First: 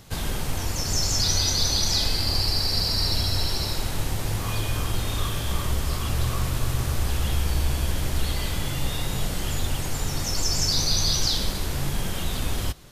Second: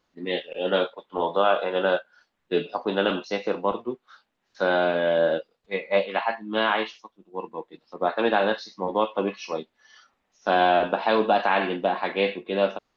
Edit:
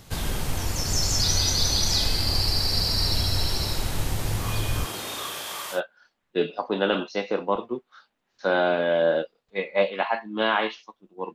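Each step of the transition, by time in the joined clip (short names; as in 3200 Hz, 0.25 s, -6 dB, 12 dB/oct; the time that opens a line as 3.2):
first
4.84–5.81 HPF 240 Hz -> 910 Hz
5.76 switch to second from 1.92 s, crossfade 0.10 s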